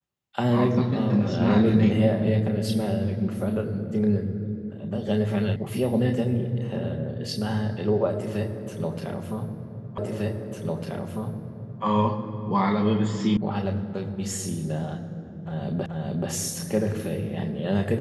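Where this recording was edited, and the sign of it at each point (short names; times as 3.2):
5.56 sound cut off
9.98 repeat of the last 1.85 s
13.37 sound cut off
15.86 repeat of the last 0.43 s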